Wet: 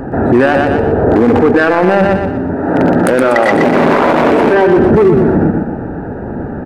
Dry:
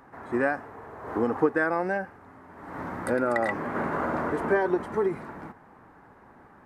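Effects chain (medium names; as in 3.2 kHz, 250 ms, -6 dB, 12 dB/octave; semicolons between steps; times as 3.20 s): local Wiener filter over 41 samples; 2.55–4.54 s: high-pass 380 Hz 6 dB/octave; in parallel at +2 dB: compressor with a negative ratio -35 dBFS, ratio -1; on the sum: saturation -16 dBFS, distortion -17 dB; on a send: feedback delay 121 ms, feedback 38%, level -8 dB; on the sum: loudness maximiser +26 dB; trim -1 dB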